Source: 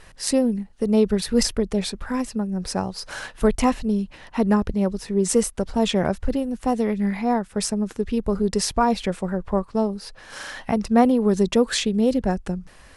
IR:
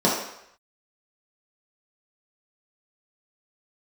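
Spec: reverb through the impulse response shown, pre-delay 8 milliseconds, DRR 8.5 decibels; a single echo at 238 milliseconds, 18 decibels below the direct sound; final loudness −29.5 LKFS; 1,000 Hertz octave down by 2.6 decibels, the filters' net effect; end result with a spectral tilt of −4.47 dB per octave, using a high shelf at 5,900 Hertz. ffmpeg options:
-filter_complex "[0:a]equalizer=frequency=1000:width_type=o:gain=-4,highshelf=frequency=5900:gain=8,aecho=1:1:238:0.126,asplit=2[link_01][link_02];[1:a]atrim=start_sample=2205,adelay=8[link_03];[link_02][link_03]afir=irnorm=-1:irlink=0,volume=-26.5dB[link_04];[link_01][link_04]amix=inputs=2:normalize=0,volume=-8dB"

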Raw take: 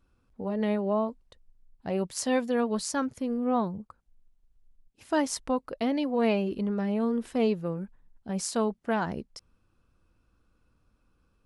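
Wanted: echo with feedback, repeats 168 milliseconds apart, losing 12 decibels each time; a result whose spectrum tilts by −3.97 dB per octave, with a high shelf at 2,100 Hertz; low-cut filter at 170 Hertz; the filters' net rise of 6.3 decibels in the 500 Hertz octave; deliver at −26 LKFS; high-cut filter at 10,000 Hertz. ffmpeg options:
ffmpeg -i in.wav -af "highpass=170,lowpass=10000,equalizer=frequency=500:width_type=o:gain=7,highshelf=frequency=2100:gain=7.5,aecho=1:1:168|336|504:0.251|0.0628|0.0157,volume=-1dB" out.wav

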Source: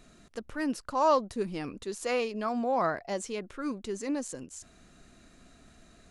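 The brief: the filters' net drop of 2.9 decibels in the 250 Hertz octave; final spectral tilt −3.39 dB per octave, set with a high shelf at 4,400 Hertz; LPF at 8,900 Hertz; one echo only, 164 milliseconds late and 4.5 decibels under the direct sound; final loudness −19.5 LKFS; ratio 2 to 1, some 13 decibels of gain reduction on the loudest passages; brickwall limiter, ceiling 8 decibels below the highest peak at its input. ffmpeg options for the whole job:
ffmpeg -i in.wav -af "lowpass=8900,equalizer=frequency=250:width_type=o:gain=-3.5,highshelf=frequency=4400:gain=6.5,acompressor=threshold=-44dB:ratio=2,alimiter=level_in=11.5dB:limit=-24dB:level=0:latency=1,volume=-11.5dB,aecho=1:1:164:0.596,volume=24.5dB" out.wav

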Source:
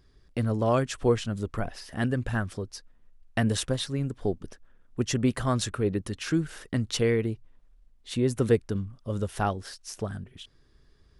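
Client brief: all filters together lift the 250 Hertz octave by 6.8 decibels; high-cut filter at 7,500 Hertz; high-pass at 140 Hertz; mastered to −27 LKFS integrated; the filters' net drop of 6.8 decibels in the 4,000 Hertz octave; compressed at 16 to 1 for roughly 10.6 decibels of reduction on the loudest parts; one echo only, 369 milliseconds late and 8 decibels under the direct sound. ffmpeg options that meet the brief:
ffmpeg -i in.wav -af "highpass=140,lowpass=7500,equalizer=frequency=250:width_type=o:gain=8.5,equalizer=frequency=4000:width_type=o:gain=-8.5,acompressor=threshold=-23dB:ratio=16,aecho=1:1:369:0.398,volume=4dB" out.wav

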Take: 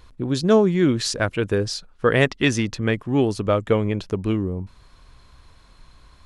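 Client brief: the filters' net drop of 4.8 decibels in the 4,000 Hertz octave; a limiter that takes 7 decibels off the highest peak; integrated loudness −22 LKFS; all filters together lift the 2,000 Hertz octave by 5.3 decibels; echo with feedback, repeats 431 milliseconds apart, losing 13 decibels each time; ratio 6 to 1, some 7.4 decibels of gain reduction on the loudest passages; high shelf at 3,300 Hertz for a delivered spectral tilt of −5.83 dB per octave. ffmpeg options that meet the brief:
ffmpeg -i in.wav -af "equalizer=frequency=2000:width_type=o:gain=9,highshelf=frequency=3300:gain=-5,equalizer=frequency=4000:width_type=o:gain=-5.5,acompressor=threshold=-18dB:ratio=6,alimiter=limit=-14.5dB:level=0:latency=1,aecho=1:1:431|862|1293:0.224|0.0493|0.0108,volume=4dB" out.wav

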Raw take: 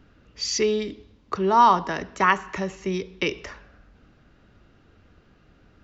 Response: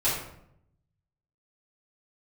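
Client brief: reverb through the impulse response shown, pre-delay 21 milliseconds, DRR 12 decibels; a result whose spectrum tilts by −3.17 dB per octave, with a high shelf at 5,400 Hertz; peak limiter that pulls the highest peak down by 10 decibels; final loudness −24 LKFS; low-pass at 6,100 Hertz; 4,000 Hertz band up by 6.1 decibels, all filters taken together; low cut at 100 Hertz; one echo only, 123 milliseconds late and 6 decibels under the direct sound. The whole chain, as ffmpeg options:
-filter_complex "[0:a]highpass=100,lowpass=6100,equalizer=frequency=4000:width_type=o:gain=7.5,highshelf=frequency=5400:gain=3.5,alimiter=limit=-14dB:level=0:latency=1,aecho=1:1:123:0.501,asplit=2[link_01][link_02];[1:a]atrim=start_sample=2205,adelay=21[link_03];[link_02][link_03]afir=irnorm=-1:irlink=0,volume=-23.5dB[link_04];[link_01][link_04]amix=inputs=2:normalize=0,volume=1dB"

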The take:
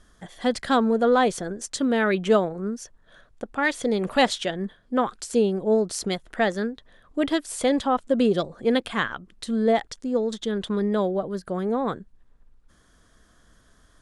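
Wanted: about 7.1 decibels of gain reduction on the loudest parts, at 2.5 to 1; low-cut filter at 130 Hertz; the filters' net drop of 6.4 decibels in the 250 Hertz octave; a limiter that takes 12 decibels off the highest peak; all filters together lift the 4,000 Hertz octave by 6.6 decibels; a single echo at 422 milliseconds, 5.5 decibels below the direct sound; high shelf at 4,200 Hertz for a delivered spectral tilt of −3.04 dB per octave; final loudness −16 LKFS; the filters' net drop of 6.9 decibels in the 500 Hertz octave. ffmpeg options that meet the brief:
ffmpeg -i in.wav -af "highpass=130,equalizer=frequency=250:width_type=o:gain=-5.5,equalizer=frequency=500:width_type=o:gain=-7,equalizer=frequency=4000:width_type=o:gain=3.5,highshelf=frequency=4200:gain=9,acompressor=threshold=-27dB:ratio=2.5,alimiter=limit=-22dB:level=0:latency=1,aecho=1:1:422:0.531,volume=16dB" out.wav

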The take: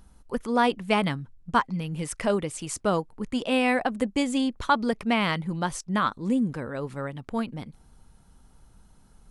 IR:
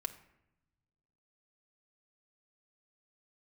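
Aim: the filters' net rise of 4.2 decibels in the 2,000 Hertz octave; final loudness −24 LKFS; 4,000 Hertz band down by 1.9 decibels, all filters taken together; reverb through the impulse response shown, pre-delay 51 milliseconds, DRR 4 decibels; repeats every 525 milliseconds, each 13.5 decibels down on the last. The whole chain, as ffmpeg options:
-filter_complex "[0:a]equalizer=frequency=2000:width_type=o:gain=7,equalizer=frequency=4000:width_type=o:gain=-6.5,aecho=1:1:525|1050:0.211|0.0444,asplit=2[link_01][link_02];[1:a]atrim=start_sample=2205,adelay=51[link_03];[link_02][link_03]afir=irnorm=-1:irlink=0,volume=-3dB[link_04];[link_01][link_04]amix=inputs=2:normalize=0,volume=0.5dB"

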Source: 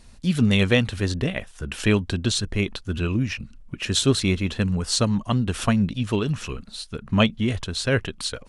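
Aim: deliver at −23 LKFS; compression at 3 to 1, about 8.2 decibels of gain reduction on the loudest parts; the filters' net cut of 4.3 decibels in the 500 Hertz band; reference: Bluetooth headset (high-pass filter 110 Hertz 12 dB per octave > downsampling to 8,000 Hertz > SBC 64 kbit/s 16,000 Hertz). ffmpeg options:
ffmpeg -i in.wav -af "equalizer=frequency=500:width_type=o:gain=-5.5,acompressor=threshold=-26dB:ratio=3,highpass=110,aresample=8000,aresample=44100,volume=8.5dB" -ar 16000 -c:a sbc -b:a 64k out.sbc

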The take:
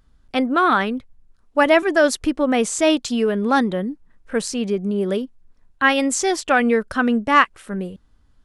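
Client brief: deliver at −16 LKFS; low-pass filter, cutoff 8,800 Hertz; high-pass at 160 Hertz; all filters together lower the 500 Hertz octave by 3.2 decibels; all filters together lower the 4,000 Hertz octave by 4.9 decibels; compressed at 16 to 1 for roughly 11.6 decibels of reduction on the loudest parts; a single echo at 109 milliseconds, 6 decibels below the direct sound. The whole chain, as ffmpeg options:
ffmpeg -i in.wav -af "highpass=160,lowpass=8800,equalizer=frequency=500:width_type=o:gain=-4,equalizer=frequency=4000:width_type=o:gain=-7,acompressor=threshold=-21dB:ratio=16,aecho=1:1:109:0.501,volume=10dB" out.wav

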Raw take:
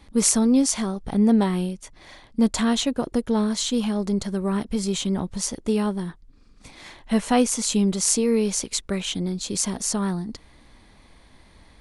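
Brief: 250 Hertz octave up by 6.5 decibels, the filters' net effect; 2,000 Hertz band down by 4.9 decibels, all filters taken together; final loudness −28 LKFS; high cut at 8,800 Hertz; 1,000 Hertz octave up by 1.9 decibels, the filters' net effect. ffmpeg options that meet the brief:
ffmpeg -i in.wav -af "lowpass=8800,equalizer=frequency=250:width_type=o:gain=7.5,equalizer=frequency=1000:width_type=o:gain=3.5,equalizer=frequency=2000:width_type=o:gain=-7.5,volume=-9.5dB" out.wav

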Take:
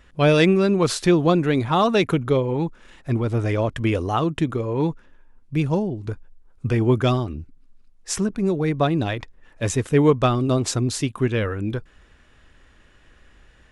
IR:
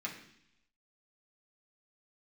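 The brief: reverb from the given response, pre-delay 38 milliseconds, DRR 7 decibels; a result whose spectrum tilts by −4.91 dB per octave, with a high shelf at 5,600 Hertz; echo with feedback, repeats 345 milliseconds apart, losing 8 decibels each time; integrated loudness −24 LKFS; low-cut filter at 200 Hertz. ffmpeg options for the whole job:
-filter_complex "[0:a]highpass=200,highshelf=frequency=5600:gain=4.5,aecho=1:1:345|690|1035|1380|1725:0.398|0.159|0.0637|0.0255|0.0102,asplit=2[link_01][link_02];[1:a]atrim=start_sample=2205,adelay=38[link_03];[link_02][link_03]afir=irnorm=-1:irlink=0,volume=-8.5dB[link_04];[link_01][link_04]amix=inputs=2:normalize=0,volume=-2.5dB"

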